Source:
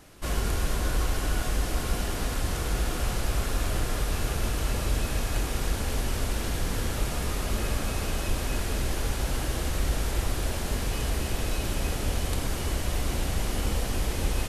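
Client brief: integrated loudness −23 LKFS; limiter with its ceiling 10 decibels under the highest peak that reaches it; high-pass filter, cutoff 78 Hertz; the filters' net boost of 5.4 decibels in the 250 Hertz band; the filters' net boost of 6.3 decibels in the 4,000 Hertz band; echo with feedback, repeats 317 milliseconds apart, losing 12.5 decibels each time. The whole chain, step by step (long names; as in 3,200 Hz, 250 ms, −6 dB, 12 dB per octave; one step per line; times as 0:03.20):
high-pass filter 78 Hz
parametric band 250 Hz +7 dB
parametric band 4,000 Hz +8 dB
brickwall limiter −21 dBFS
repeating echo 317 ms, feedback 24%, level −12.5 dB
level +7 dB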